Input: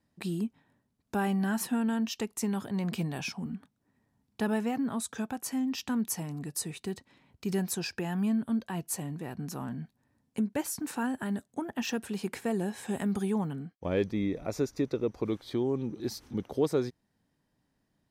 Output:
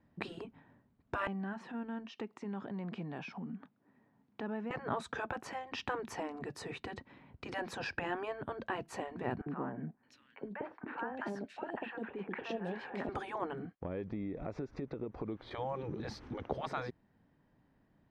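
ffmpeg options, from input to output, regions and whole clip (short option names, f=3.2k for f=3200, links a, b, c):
-filter_complex "[0:a]asettb=1/sr,asplit=3[a][b][c];[a]atrim=end=1.274[d];[b]atrim=start=1.27:end=4.71,asetpts=PTS-STARTPTS,afade=t=in:d=0.004:c=qsin,afade=t=out:st=3.436:d=0.004:c=qsin,acompressor=threshold=-48dB:ratio=2.5:attack=3.2:release=140:knee=1:detection=peak,highpass=180,lowpass=6.9k[e];[c]atrim=start=4.706[f];[d][e]acrossfade=d=0.004:c1=hsin:c2=qsin[g];[g][f]acrossfade=d=0.004:c1=qsin:c2=hsin,asettb=1/sr,asplit=3[h][i][j];[h]atrim=end=9.414[k];[i]atrim=start=9.41:end=13.09,asetpts=PTS-STARTPTS,afade=t=in:d=0.004:c=qsin,afade=t=out:st=3.676:d=0.004:c=qsin,acompressor=threshold=-34dB:ratio=6:attack=3.2:release=140:knee=1:detection=peak,acrossover=split=220 4500:gain=0.158 1 0.251[l][m][n];[l][m][n]amix=inputs=3:normalize=0,acrossover=split=810|2500[o][p][q];[o]adelay=50[r];[q]adelay=620[s];[r][p][s]amix=inputs=3:normalize=0,atrim=end_sample=162288[t];[j]atrim=start=13.086[u];[k][t]acrossfade=d=0.004:c1=hsin:c2=qsin[v];[v][u]acrossfade=d=0.004:c1=qsin:c2=hsin,asettb=1/sr,asplit=3[w][x][y];[w]atrim=end=13.754[z];[x]atrim=start=13.75:end=15.51,asetpts=PTS-STARTPTS,afade=t=in:d=0.004:c=qsin,afade=t=out:st=1.756:d=0.004:c=qsin,acompressor=threshold=-43dB:ratio=5:attack=3.2:release=140:knee=1:detection=peak,highshelf=f=7.7k:g=-11[aa];[y]atrim=start=15.506[ab];[z][aa]acrossfade=d=0.004:c1=hsin:c2=qsin[ac];[ac][ab]acrossfade=d=0.004:c1=qsin:c2=hsin,afftfilt=real='re*lt(hypot(re,im),0.0794)':imag='im*lt(hypot(re,im),0.0794)':win_size=1024:overlap=0.75,lowpass=2.1k,volume=6dB"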